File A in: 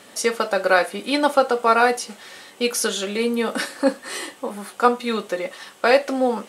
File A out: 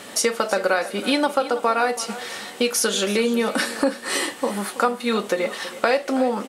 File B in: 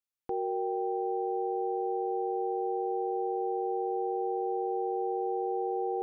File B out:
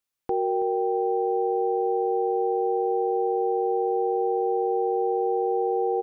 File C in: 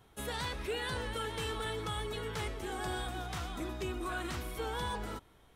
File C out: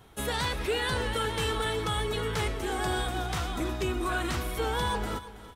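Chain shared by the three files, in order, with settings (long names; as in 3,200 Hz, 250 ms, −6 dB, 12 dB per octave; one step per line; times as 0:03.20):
downward compressor 4 to 1, threshold −26 dBFS
on a send: repeating echo 326 ms, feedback 34%, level −15.5 dB
on the sum: level +7.5 dB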